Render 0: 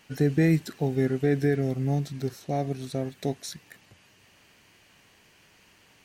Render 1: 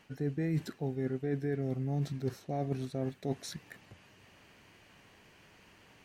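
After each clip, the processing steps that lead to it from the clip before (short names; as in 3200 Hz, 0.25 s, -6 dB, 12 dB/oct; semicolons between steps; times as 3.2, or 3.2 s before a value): reverse; compressor 8:1, threshold -31 dBFS, peak gain reduction 14 dB; reverse; high shelf 2900 Hz -9 dB; gain +1.5 dB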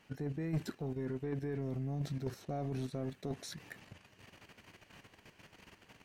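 level quantiser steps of 10 dB; soft clip -32.5 dBFS, distortion -14 dB; gain +4 dB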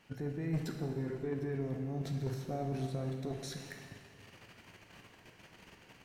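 plate-style reverb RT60 2 s, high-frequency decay 0.85×, DRR 3 dB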